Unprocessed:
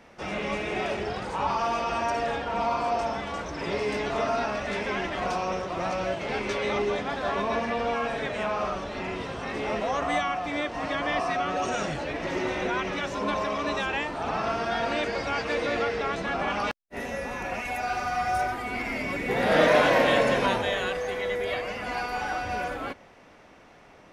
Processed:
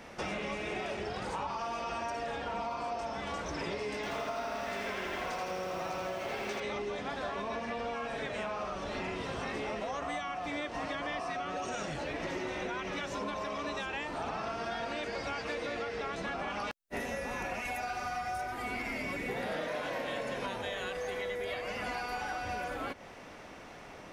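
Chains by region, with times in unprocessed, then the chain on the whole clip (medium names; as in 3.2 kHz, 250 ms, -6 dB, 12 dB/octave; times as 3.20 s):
3.95–6.60 s: bass shelf 220 Hz -5.5 dB + bit-crushed delay 81 ms, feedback 80%, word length 9-bit, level -4 dB
whole clip: treble shelf 5.1 kHz +4.5 dB; compression 12:1, threshold -37 dBFS; trim +3.5 dB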